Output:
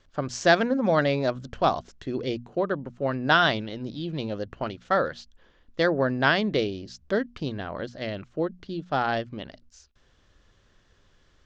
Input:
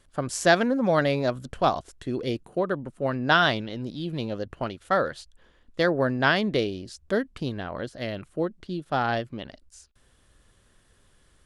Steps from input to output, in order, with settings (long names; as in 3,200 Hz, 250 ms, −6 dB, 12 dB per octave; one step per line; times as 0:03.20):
Butterworth low-pass 6,700 Hz 48 dB per octave
mains-hum notches 60/120/180/240 Hz